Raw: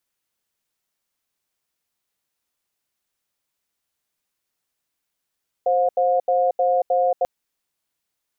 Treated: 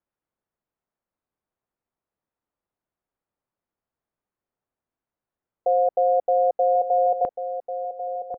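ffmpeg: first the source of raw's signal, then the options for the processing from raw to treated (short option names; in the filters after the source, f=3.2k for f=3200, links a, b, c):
-f lavfi -i "aevalsrc='0.119*(sin(2*PI*526*t)+sin(2*PI*716*t))*clip(min(mod(t,0.31),0.23-mod(t,0.31))/0.005,0,1)':d=1.59:s=44100"
-filter_complex "[0:a]lowpass=1.1k,asplit=2[a][b];[b]adelay=1092,lowpass=f=830:p=1,volume=-8dB,asplit=2[c][d];[d]adelay=1092,lowpass=f=830:p=1,volume=0.43,asplit=2[e][f];[f]adelay=1092,lowpass=f=830:p=1,volume=0.43,asplit=2[g][h];[h]adelay=1092,lowpass=f=830:p=1,volume=0.43,asplit=2[i][j];[j]adelay=1092,lowpass=f=830:p=1,volume=0.43[k];[a][c][e][g][i][k]amix=inputs=6:normalize=0"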